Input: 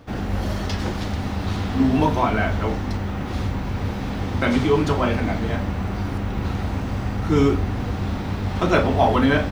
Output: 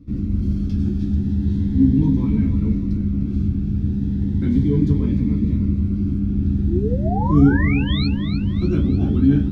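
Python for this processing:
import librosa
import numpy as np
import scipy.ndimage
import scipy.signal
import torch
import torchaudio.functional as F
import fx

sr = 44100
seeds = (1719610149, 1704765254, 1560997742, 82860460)

y = fx.curve_eq(x, sr, hz=(290.0, 640.0, 3300.0), db=(0, -29, -16))
y = fx.spec_paint(y, sr, seeds[0], shape='rise', start_s=6.68, length_s=1.39, low_hz=310.0, high_hz=4400.0, level_db=-29.0)
y = fx.high_shelf(y, sr, hz=2900.0, db=-7.5)
y = fx.notch(y, sr, hz=2900.0, q=11.0)
y = fx.doubler(y, sr, ms=14.0, db=-5)
y = fx.echo_feedback(y, sr, ms=300, feedback_pct=52, wet_db=-10)
y = fx.notch_cascade(y, sr, direction='rising', hz=0.36)
y = F.gain(torch.from_numpy(y), 3.5).numpy()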